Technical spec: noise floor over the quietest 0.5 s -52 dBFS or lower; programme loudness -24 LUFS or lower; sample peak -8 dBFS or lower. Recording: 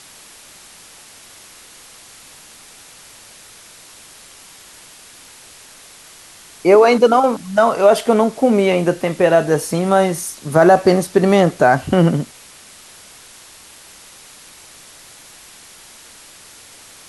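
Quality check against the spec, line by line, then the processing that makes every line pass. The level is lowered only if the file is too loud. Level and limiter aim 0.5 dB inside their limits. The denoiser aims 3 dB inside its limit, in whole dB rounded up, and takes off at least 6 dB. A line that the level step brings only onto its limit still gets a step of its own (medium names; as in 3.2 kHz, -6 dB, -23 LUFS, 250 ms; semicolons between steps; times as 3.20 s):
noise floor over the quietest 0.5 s -42 dBFS: fail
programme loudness -14.5 LUFS: fail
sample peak -1.5 dBFS: fail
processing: noise reduction 6 dB, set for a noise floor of -42 dBFS; trim -10 dB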